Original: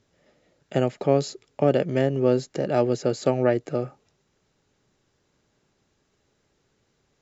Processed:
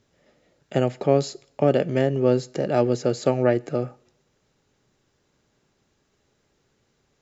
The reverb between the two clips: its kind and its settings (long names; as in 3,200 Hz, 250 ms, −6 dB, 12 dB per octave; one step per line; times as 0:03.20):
coupled-rooms reverb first 0.52 s, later 2 s, from −27 dB, DRR 19 dB
level +1 dB